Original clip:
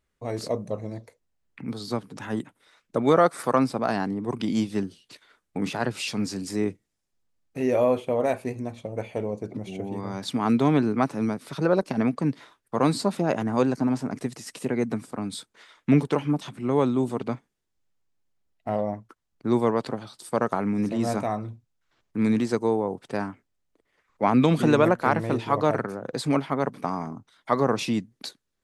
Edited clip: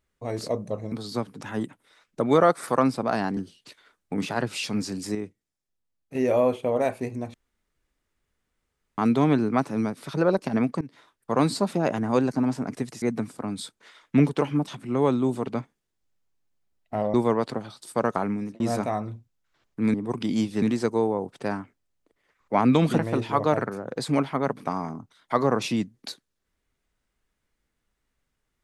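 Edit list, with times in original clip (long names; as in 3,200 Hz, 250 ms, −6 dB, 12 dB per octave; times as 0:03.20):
0:00.92–0:01.68: remove
0:04.13–0:04.81: move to 0:22.31
0:06.59–0:07.59: clip gain −7 dB
0:08.78–0:10.42: fill with room tone
0:12.25–0:12.85: fade in equal-power, from −22 dB
0:14.46–0:14.76: remove
0:18.88–0:19.51: remove
0:20.62–0:20.97: fade out
0:24.67–0:25.15: remove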